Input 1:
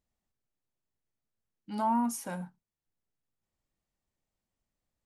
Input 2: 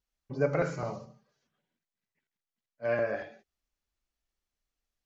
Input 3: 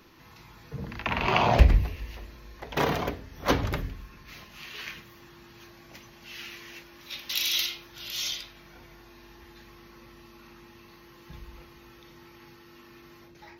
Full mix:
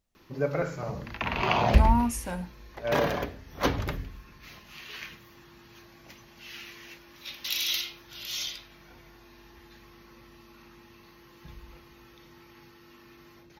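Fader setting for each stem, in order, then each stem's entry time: +3.0, -0.5, -2.0 dB; 0.00, 0.00, 0.15 s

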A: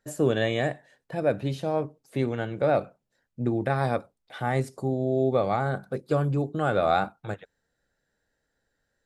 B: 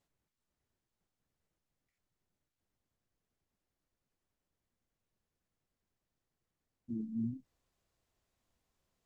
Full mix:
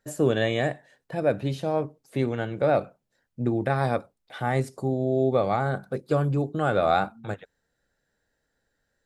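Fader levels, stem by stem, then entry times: +1.0, -14.0 dB; 0.00, 0.00 s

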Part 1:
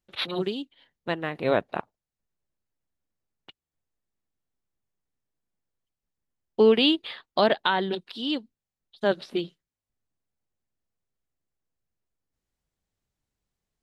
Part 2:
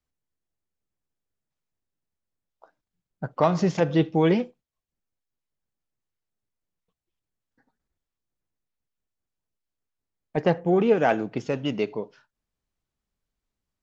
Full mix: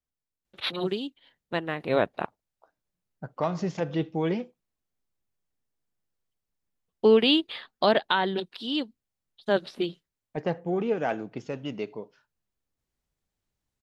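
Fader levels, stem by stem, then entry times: -0.5, -7.0 dB; 0.45, 0.00 s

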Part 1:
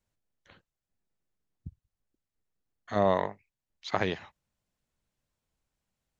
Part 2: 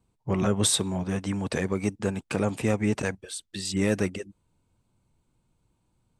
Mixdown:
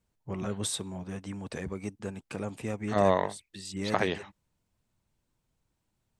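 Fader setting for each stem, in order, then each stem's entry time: +1.0, -9.5 dB; 0.00, 0.00 s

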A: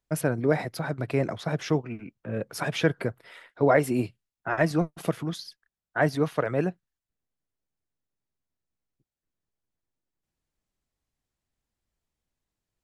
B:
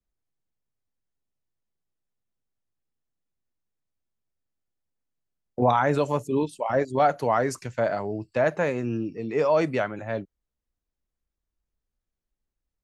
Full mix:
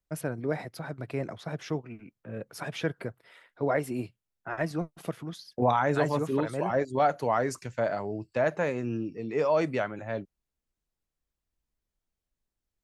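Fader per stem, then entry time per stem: -7.0, -3.5 dB; 0.00, 0.00 s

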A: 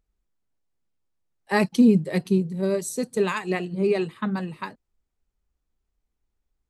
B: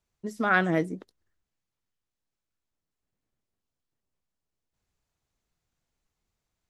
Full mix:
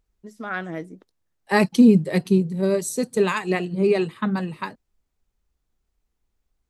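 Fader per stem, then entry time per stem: +3.0, -6.5 dB; 0.00, 0.00 s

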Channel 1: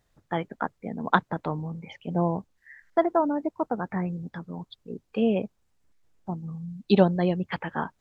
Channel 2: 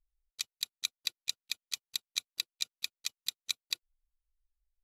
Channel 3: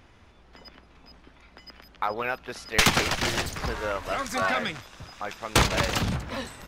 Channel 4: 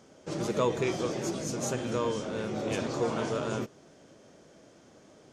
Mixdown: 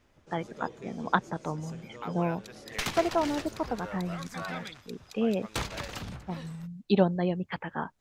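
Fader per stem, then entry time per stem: -4.0, -15.0, -12.5, -17.0 dB; 0.00, 2.05, 0.00, 0.00 s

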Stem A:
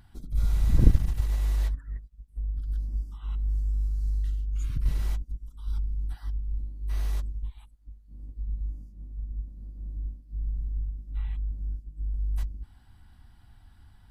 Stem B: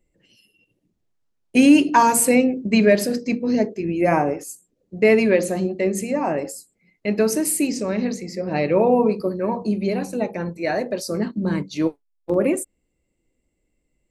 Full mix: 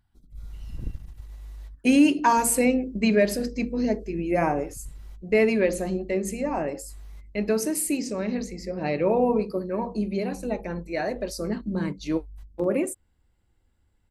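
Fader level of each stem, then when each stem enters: -15.0, -5.0 dB; 0.00, 0.30 s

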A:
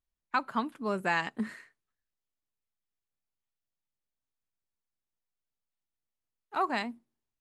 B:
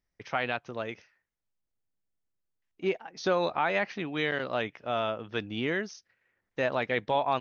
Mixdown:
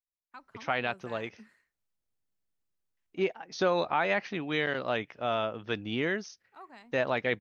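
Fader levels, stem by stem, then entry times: -20.0, 0.0 dB; 0.00, 0.35 s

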